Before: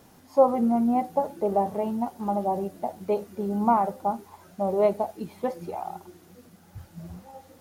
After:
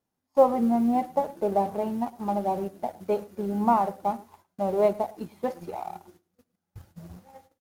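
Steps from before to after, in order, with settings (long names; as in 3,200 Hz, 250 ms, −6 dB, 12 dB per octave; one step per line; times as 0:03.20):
mu-law and A-law mismatch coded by A
noise gate −54 dBFS, range −21 dB
on a send: single-tap delay 108 ms −21.5 dB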